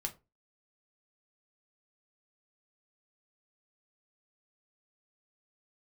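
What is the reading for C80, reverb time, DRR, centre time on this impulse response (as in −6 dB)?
24.0 dB, 0.25 s, 3.5 dB, 7 ms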